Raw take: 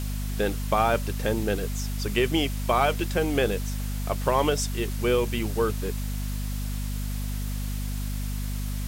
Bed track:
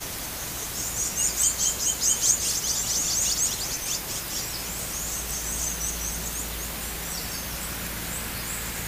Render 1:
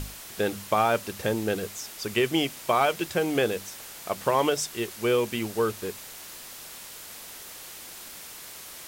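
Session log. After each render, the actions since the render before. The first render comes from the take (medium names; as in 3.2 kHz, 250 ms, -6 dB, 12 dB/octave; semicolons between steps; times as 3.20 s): hum notches 50/100/150/200/250 Hz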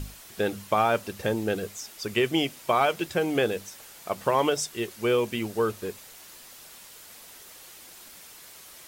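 noise reduction 6 dB, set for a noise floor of -43 dBFS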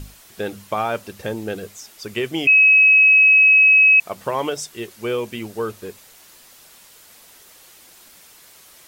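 2.47–4.00 s: bleep 2.56 kHz -8.5 dBFS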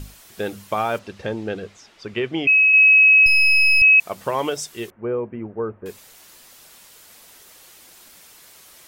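0.98–2.72 s: low-pass 5.1 kHz -> 2.6 kHz; 3.26–3.82 s: partial rectifier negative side -12 dB; 4.90–5.86 s: Gaussian low-pass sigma 5.8 samples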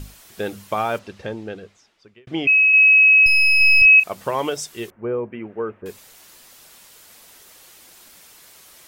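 0.92–2.27 s: fade out; 3.57–4.05 s: doubling 36 ms -9 dB; 5.32–5.82 s: frequency weighting D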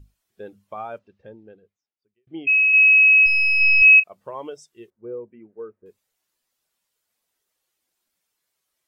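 spectral contrast expander 1.5:1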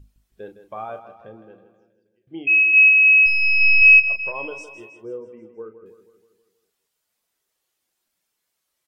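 doubling 36 ms -10 dB; feedback delay 160 ms, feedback 54%, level -11.5 dB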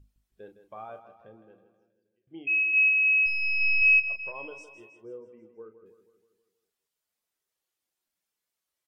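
trim -9.5 dB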